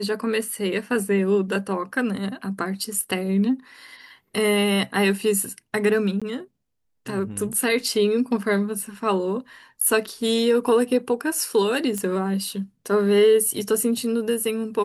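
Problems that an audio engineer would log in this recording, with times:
0:06.20–0:06.22: drop-out 16 ms
0:11.98: click −14 dBFS

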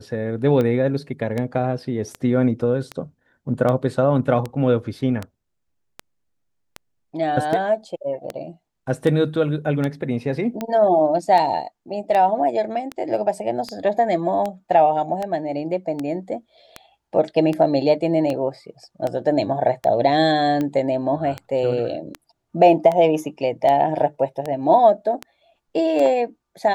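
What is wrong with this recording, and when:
scratch tick 78 rpm −13 dBFS

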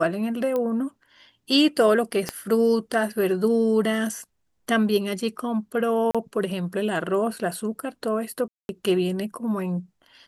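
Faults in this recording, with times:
0:00.56: click −15 dBFS
0:02.29: click −11 dBFS
0:06.11–0:06.15: drop-out 36 ms
0:08.48–0:08.69: drop-out 211 ms

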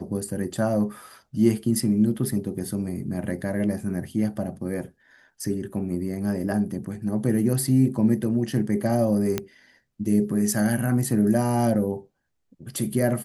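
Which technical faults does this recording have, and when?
0:09.38: click −10 dBFS

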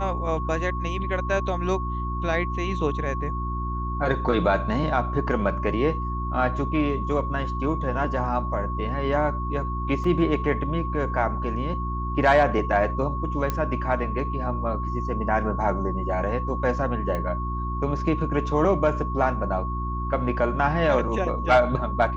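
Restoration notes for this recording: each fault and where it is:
mains hum 60 Hz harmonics 6 −29 dBFS
whistle 1,100 Hz −31 dBFS
0:10.04: drop-out 3.5 ms
0:13.50: click −12 dBFS
0:17.15: click −17 dBFS

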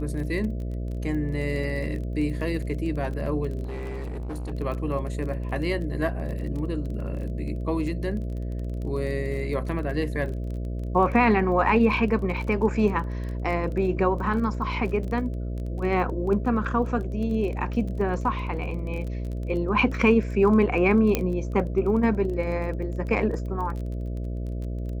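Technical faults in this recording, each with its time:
mains buzz 60 Hz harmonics 11 −30 dBFS
surface crackle 21 per second −33 dBFS
0:03.63–0:04.53: clipping −29.5 dBFS
0:21.15: click −8 dBFS

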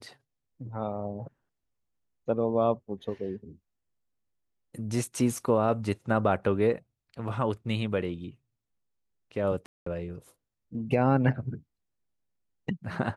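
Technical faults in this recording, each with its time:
0:09.66–0:09.86: drop-out 204 ms

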